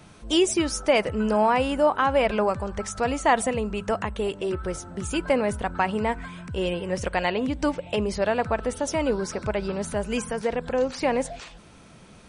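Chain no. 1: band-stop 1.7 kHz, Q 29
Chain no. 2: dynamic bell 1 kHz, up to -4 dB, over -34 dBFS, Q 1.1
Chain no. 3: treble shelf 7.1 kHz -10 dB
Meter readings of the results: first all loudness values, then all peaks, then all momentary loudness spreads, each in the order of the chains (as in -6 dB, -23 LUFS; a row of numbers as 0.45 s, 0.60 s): -25.5 LUFS, -26.5 LUFS, -25.5 LUFS; -8.0 dBFS, -9.5 dBFS, -8.5 dBFS; 8 LU, 7 LU, 8 LU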